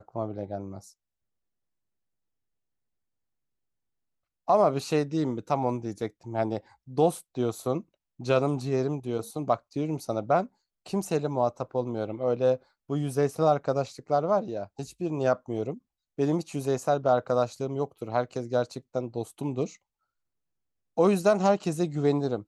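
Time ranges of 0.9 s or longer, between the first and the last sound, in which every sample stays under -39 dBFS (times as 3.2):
0.86–4.48
19.72–20.98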